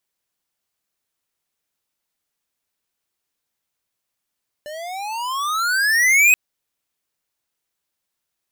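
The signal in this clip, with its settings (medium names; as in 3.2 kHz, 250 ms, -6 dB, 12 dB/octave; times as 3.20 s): gliding synth tone square, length 1.68 s, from 587 Hz, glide +25.5 st, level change +21 dB, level -11.5 dB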